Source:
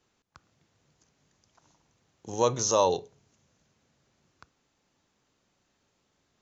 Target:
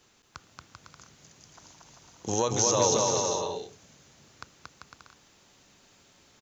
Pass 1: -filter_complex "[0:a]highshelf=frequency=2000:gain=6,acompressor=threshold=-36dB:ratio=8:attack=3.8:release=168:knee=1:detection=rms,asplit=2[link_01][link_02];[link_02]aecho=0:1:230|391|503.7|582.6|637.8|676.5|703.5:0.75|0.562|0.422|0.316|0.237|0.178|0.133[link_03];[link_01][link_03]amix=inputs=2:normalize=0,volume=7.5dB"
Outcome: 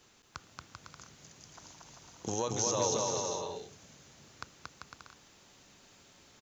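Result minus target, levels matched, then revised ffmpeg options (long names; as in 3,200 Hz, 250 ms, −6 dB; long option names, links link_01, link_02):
downward compressor: peak gain reduction +7 dB
-filter_complex "[0:a]highshelf=frequency=2000:gain=6,acompressor=threshold=-28dB:ratio=8:attack=3.8:release=168:knee=1:detection=rms,asplit=2[link_01][link_02];[link_02]aecho=0:1:230|391|503.7|582.6|637.8|676.5|703.5:0.75|0.562|0.422|0.316|0.237|0.178|0.133[link_03];[link_01][link_03]amix=inputs=2:normalize=0,volume=7.5dB"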